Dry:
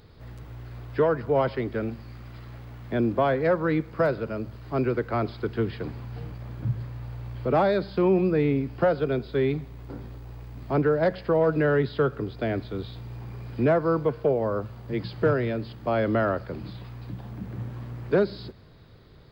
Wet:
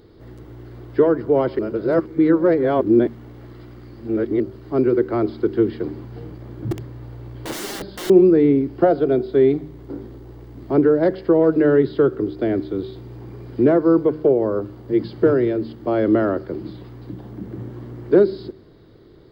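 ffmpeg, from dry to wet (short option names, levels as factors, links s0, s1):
-filter_complex "[0:a]asettb=1/sr,asplit=3[s0][s1][s2];[s0]atrim=end=6.714[s3];[s1]atrim=start=6.71:end=8.1,asetpts=PTS-STARTPTS,afade=t=in:d=0.004:c=qsin,afade=t=out:st=1.386:d=0.004:c=qsin,aeval=exprs='(mod(20*val(0)+1,2)-1)/20':c=same[s4];[s2]atrim=start=8.096[s5];[s3][s4]acrossfade=d=0.004:c1=hsin:c2=qsin[s6];[s6][s5]acrossfade=d=0.004:c1=qsin:c2=hsin,asettb=1/sr,asplit=3[s7][s8][s9];[s7]atrim=end=8.834[s10];[s8]atrim=start=8.83:end=9.63,asetpts=PTS-STARTPTS,afade=t=in:d=0.004:c=qsin,afade=t=out:st=0.796:d=0.004:c=qsin,equalizer=f=690:w=6.9:g=9.5[s11];[s9]atrim=start=9.626[s12];[s10][s11]acrossfade=d=0.004:c1=hsin:c2=qsin[s13];[s13][s12]acrossfade=d=0.004:c1=qsin:c2=hsin,asplit=3[s14][s15][s16];[s14]atrim=end=1.592[s17];[s15]atrim=start=1.588:end=4.402,asetpts=PTS-STARTPTS,areverse[s18];[s16]atrim=start=4.398[s19];[s17][s18]acrossfade=d=0.004:c1=hsin:c2=hsin[s20];[s20][s19]acrossfade=d=0.004:c1=hsin:c2=hsin,equalizer=f=340:t=o:w=0.9:g=15,bandreject=f=2500:w=10,bandreject=f=76.46:t=h:w=4,bandreject=f=152.92:t=h:w=4,bandreject=f=229.38:t=h:w=4,bandreject=f=305.84:t=h:w=4,bandreject=f=382.3:t=h:w=4,volume=0.891"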